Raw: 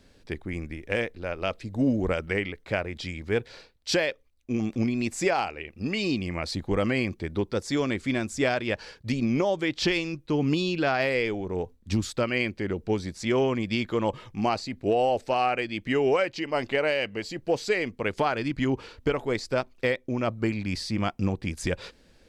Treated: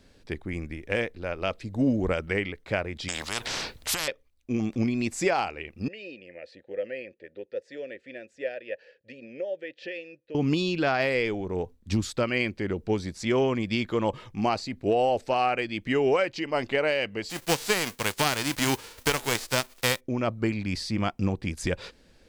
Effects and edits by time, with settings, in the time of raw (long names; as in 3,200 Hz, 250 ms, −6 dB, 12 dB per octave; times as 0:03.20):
0:03.08–0:04.08: every bin compressed towards the loudest bin 10 to 1
0:05.88–0:10.35: formant filter e
0:17.29–0:19.99: spectral envelope flattened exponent 0.3